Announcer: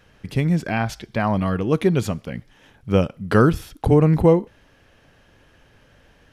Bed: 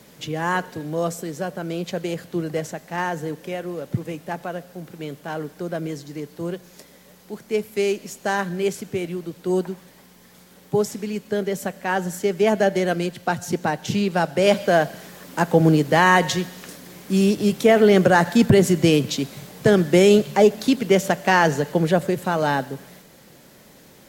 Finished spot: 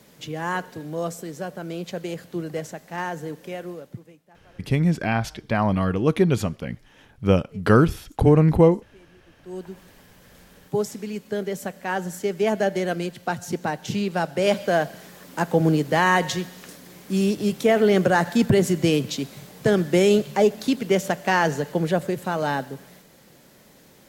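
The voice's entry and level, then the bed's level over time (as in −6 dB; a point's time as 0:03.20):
4.35 s, −0.5 dB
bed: 0:03.70 −4 dB
0:04.30 −26 dB
0:09.23 −26 dB
0:09.81 −3.5 dB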